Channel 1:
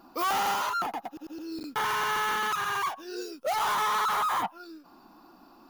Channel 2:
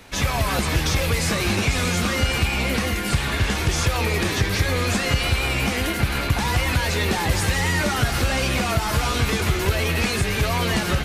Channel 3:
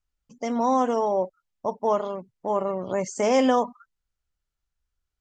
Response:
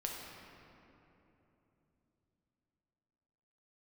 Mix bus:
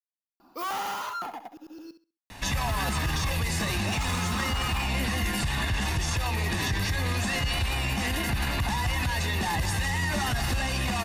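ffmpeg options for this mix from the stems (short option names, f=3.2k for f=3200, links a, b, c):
-filter_complex "[0:a]adelay=400,volume=-4.5dB,asplit=3[a][b][c];[a]atrim=end=1.91,asetpts=PTS-STARTPTS,afade=t=out:st=1.906:d=0.004:c=hsin[d];[b]atrim=start=1.91:end=2.67,asetpts=PTS-STARTPTS,volume=0[e];[c]atrim=start=2.67,asetpts=PTS-STARTPTS,afade=t=in:d=0.004:c=hsin[f];[d][e][f]concat=n=3:v=0:a=1,asplit=2[g][h];[h]volume=-12dB[i];[1:a]aecho=1:1:1.1:0.52,adelay=2300,volume=1dB,alimiter=limit=-13dB:level=0:latency=1:release=102,volume=0dB[j];[i]aecho=0:1:66|132|198|264:1|0.23|0.0529|0.0122[k];[g][j][k]amix=inputs=3:normalize=0,alimiter=limit=-19.5dB:level=0:latency=1:release=44"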